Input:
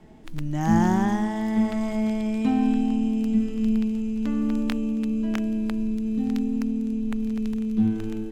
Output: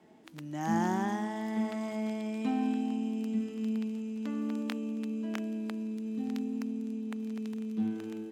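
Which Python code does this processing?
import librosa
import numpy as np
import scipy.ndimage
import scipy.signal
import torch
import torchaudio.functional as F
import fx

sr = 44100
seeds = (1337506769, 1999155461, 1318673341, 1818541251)

y = scipy.signal.sosfilt(scipy.signal.butter(2, 240.0, 'highpass', fs=sr, output='sos'), x)
y = y * 10.0 ** (-6.0 / 20.0)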